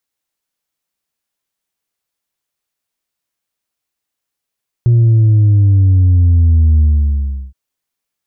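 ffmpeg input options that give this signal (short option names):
-f lavfi -i "aevalsrc='0.473*clip((2.67-t)/0.72,0,1)*tanh(1.26*sin(2*PI*120*2.67/log(65/120)*(exp(log(65/120)*t/2.67)-1)))/tanh(1.26)':d=2.67:s=44100"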